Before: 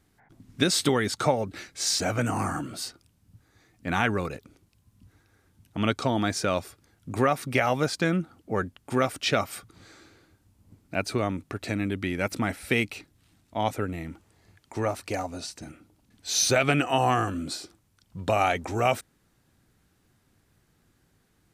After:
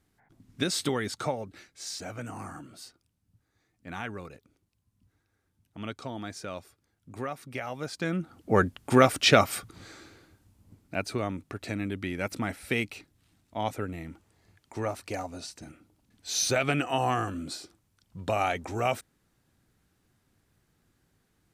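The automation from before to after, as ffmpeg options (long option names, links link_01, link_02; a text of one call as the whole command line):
ffmpeg -i in.wav -af "volume=12dB,afade=type=out:start_time=1.07:duration=0.65:silence=0.473151,afade=type=in:start_time=7.77:duration=0.42:silence=0.398107,afade=type=in:start_time=8.19:duration=0.37:silence=0.334965,afade=type=out:start_time=9.38:duration=1.71:silence=0.334965" out.wav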